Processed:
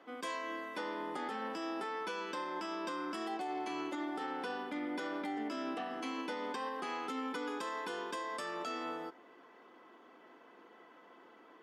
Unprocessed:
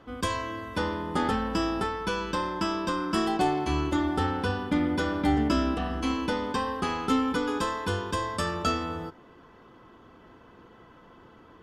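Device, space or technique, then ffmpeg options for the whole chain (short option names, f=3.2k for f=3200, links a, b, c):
laptop speaker: -af "highpass=f=260:w=0.5412,highpass=f=260:w=1.3066,equalizer=f=720:t=o:w=0.43:g=4,equalizer=f=2.1k:t=o:w=0.44:g=6,alimiter=level_in=0.5dB:limit=-24dB:level=0:latency=1:release=136,volume=-0.5dB,volume=-6dB"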